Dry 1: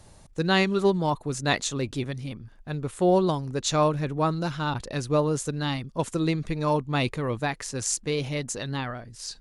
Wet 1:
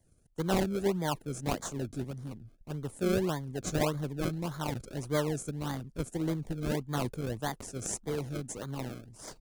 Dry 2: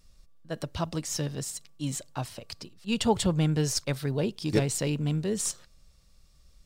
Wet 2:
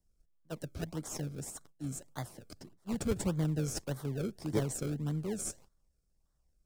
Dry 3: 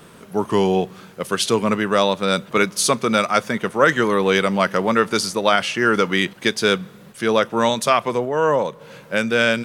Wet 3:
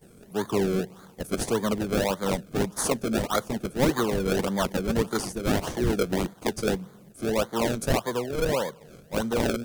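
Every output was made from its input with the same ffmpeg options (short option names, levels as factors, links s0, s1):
-filter_complex "[0:a]agate=range=0.316:threshold=0.00355:ratio=16:detection=peak,acrossover=split=140|510|5500[s0][s1][s2][s3];[s2]acrusher=samples=32:mix=1:aa=0.000001:lfo=1:lforange=32:lforate=1.7[s4];[s0][s1][s4][s3]amix=inputs=4:normalize=0,volume=0.473"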